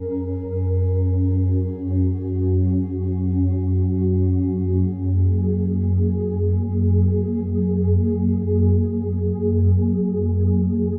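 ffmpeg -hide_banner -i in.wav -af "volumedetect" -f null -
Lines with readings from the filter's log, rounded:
mean_volume: -19.1 dB
max_volume: -8.3 dB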